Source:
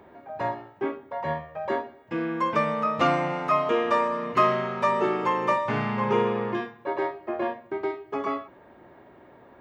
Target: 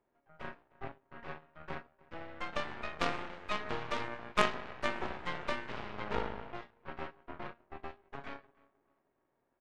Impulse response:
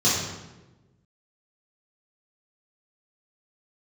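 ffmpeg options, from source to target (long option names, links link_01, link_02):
-filter_complex "[0:a]asplit=2[link_01][link_02];[link_02]adelay=306,lowpass=frequency=2700:poles=1,volume=-14dB,asplit=2[link_03][link_04];[link_04]adelay=306,lowpass=frequency=2700:poles=1,volume=0.42,asplit=2[link_05][link_06];[link_06]adelay=306,lowpass=frequency=2700:poles=1,volume=0.42,asplit=2[link_07][link_08];[link_08]adelay=306,lowpass=frequency=2700:poles=1,volume=0.42[link_09];[link_01][link_03][link_05][link_07][link_09]amix=inputs=5:normalize=0,aeval=exprs='0.398*(cos(1*acos(clip(val(0)/0.398,-1,1)))-cos(1*PI/2))+0.126*(cos(3*acos(clip(val(0)/0.398,-1,1)))-cos(3*PI/2))+0.1*(cos(4*acos(clip(val(0)/0.398,-1,1)))-cos(4*PI/2))+0.0794*(cos(6*acos(clip(val(0)/0.398,-1,1)))-cos(6*PI/2))+0.0398*(cos(8*acos(clip(val(0)/0.398,-1,1)))-cos(8*PI/2))':channel_layout=same,volume=-3dB"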